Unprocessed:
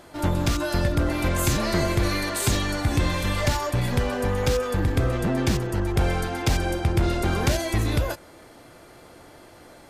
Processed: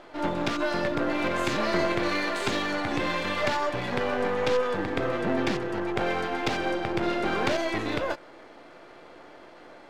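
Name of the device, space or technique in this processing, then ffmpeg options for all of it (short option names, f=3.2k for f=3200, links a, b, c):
crystal radio: -af "highpass=280,lowpass=3.3k,aeval=exprs='if(lt(val(0),0),0.447*val(0),val(0))':c=same,volume=3.5dB"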